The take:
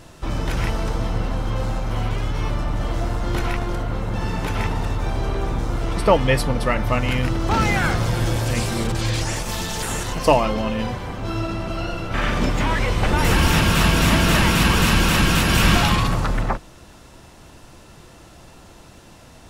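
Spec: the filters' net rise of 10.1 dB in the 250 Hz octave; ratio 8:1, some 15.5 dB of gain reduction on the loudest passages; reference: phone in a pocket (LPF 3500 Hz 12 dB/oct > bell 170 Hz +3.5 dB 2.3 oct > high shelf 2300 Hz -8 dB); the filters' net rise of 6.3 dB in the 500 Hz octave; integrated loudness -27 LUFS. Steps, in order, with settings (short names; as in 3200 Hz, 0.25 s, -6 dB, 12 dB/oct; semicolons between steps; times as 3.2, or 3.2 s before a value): bell 250 Hz +8.5 dB; bell 500 Hz +4.5 dB; compressor 8:1, threshold -22 dBFS; LPF 3500 Hz 12 dB/oct; bell 170 Hz +3.5 dB 2.3 oct; high shelf 2300 Hz -8 dB; gain -1.5 dB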